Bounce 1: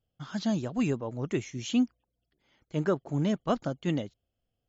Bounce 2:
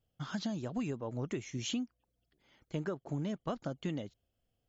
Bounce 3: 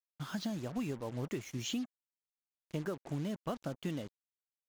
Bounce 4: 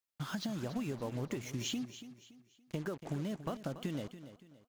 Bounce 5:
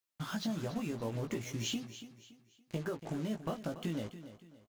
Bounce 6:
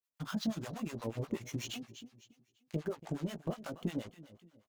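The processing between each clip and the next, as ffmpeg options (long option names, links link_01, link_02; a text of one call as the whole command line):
ffmpeg -i in.wav -af "acompressor=threshold=-34dB:ratio=10,volume=1dB" out.wav
ffmpeg -i in.wav -af "acrusher=bits=7:mix=0:aa=0.5,volume=-1dB" out.wav
ffmpeg -i in.wav -af "acompressor=threshold=-37dB:ratio=6,aecho=1:1:284|568|852|1136:0.224|0.0806|0.029|0.0104,volume=3dB" out.wav
ffmpeg -i in.wav -filter_complex "[0:a]asplit=2[link_01][link_02];[link_02]adelay=18,volume=-4.5dB[link_03];[link_01][link_03]amix=inputs=2:normalize=0" out.wav
ffmpeg -i in.wav -filter_complex "[0:a]aeval=exprs='0.0631*(cos(1*acos(clip(val(0)/0.0631,-1,1)))-cos(1*PI/2))+0.00316*(cos(7*acos(clip(val(0)/0.0631,-1,1)))-cos(7*PI/2))':channel_layout=same,acrossover=split=670[link_01][link_02];[link_01]aeval=exprs='val(0)*(1-1/2+1/2*cos(2*PI*8.3*n/s))':channel_layout=same[link_03];[link_02]aeval=exprs='val(0)*(1-1/2-1/2*cos(2*PI*8.3*n/s))':channel_layout=same[link_04];[link_03][link_04]amix=inputs=2:normalize=0,volume=3.5dB" out.wav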